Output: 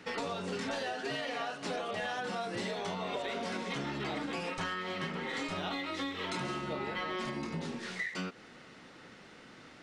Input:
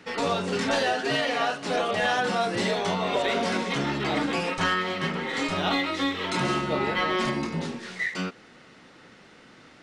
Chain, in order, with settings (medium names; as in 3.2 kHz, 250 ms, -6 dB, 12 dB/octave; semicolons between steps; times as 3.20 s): compression 6:1, threshold -32 dBFS, peak gain reduction 10.5 dB; trim -2 dB